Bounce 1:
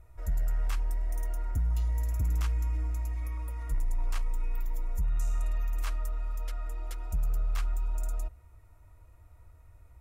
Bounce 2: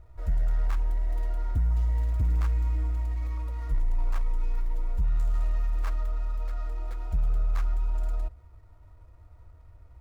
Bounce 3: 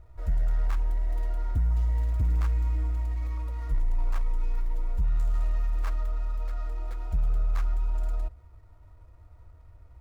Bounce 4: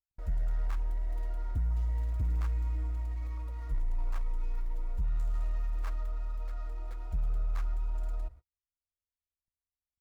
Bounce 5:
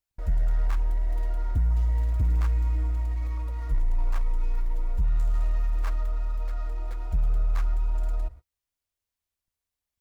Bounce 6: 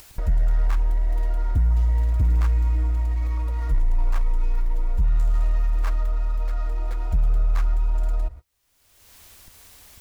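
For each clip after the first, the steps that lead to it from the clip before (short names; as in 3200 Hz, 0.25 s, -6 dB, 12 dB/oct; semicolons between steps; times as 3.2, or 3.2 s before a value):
median filter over 15 samples; gain +3.5 dB
nothing audible
gate -41 dBFS, range -49 dB; gain -5.5 dB
notch 1300 Hz, Q 28; gain +7 dB
upward compressor, threshold -24 dBFS; gain +4 dB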